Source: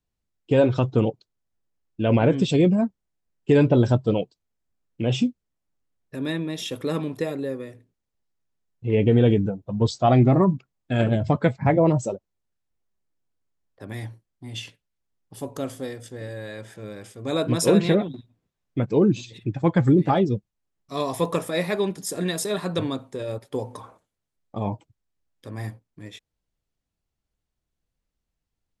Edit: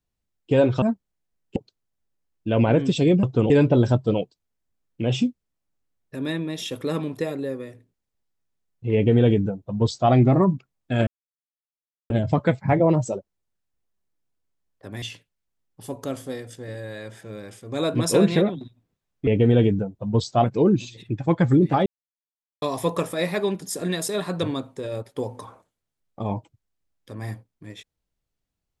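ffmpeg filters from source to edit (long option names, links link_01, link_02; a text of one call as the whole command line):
ffmpeg -i in.wav -filter_complex "[0:a]asplit=11[link_01][link_02][link_03][link_04][link_05][link_06][link_07][link_08][link_09][link_10][link_11];[link_01]atrim=end=0.822[link_12];[link_02]atrim=start=2.758:end=3.502[link_13];[link_03]atrim=start=1.088:end=2.762[link_14];[link_04]atrim=start=0.818:end=1.092[link_15];[link_05]atrim=start=3.498:end=11.07,asetpts=PTS-STARTPTS,afade=type=out:start_time=7.568:duration=0.004:curve=hsin,apad=pad_dur=1.03[link_16];[link_06]atrim=start=11.07:end=13.992,asetpts=PTS-STARTPTS,afade=type=in:duration=0.004:curve=hsin[link_17];[link_07]atrim=start=14.548:end=18.802[link_18];[link_08]atrim=start=8.938:end=10.112[link_19];[link_09]atrim=start=18.798:end=20.22,asetpts=PTS-STARTPTS,afade=type=out:start_time=1.418:duration=0.004:curve=hsin[link_20];[link_10]atrim=start=20.22:end=20.98,asetpts=PTS-STARTPTS,volume=0[link_21];[link_11]atrim=start=20.98,asetpts=PTS-STARTPTS,afade=type=in:duration=0.004:curve=hsin[link_22];[link_12][link_13]acrossfade=duration=0.004:curve1=hsin:curve2=hsin[link_23];[link_23][link_14]acrossfade=duration=0.004:curve1=hsin:curve2=hsin[link_24];[link_24][link_15]acrossfade=duration=0.004:curve1=hsin:curve2=hsin[link_25];[link_16][link_17]concat=n=2:v=0:a=1[link_26];[link_25][link_26]acrossfade=duration=0.004:curve1=hsin:curve2=hsin[link_27];[link_27][link_18]acrossfade=duration=0.004:curve1=hsin:curve2=hsin[link_28];[link_28][link_19]acrossfade=duration=0.004:curve1=hsin:curve2=hsin[link_29];[link_20][link_21][link_22]concat=n=3:v=0:a=1[link_30];[link_29][link_30]acrossfade=duration=0.004:curve1=hsin:curve2=hsin" out.wav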